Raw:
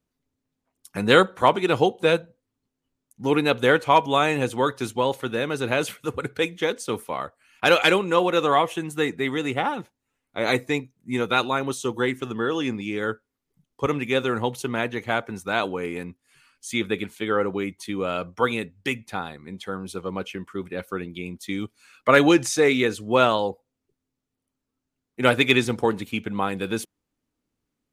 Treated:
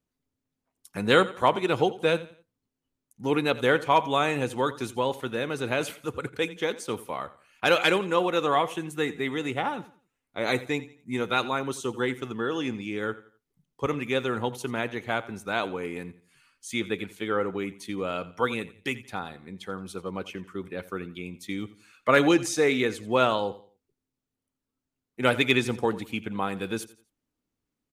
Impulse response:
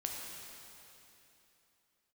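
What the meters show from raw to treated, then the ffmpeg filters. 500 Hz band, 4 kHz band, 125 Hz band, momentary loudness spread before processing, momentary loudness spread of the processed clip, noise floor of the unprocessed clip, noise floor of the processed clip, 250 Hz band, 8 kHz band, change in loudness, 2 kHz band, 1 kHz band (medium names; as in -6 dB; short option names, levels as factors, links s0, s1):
-4.0 dB, -4.0 dB, -4.0 dB, 14 LU, 14 LU, -83 dBFS, under -85 dBFS, -4.0 dB, -4.0 dB, -4.0 dB, -4.0 dB, -4.0 dB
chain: -af "aecho=1:1:86|172|258:0.133|0.044|0.0145,volume=0.631"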